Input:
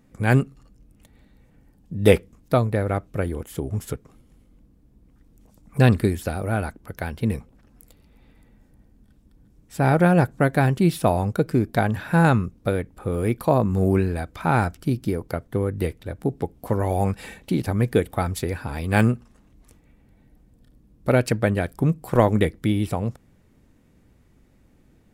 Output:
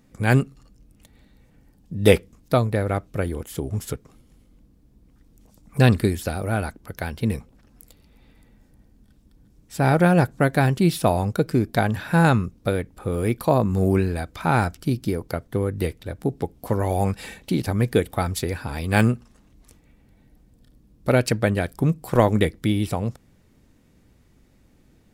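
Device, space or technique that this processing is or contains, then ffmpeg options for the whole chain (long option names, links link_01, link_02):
presence and air boost: -af "equalizer=frequency=4700:width_type=o:width=1.4:gain=4.5,highshelf=frequency=9700:gain=3.5"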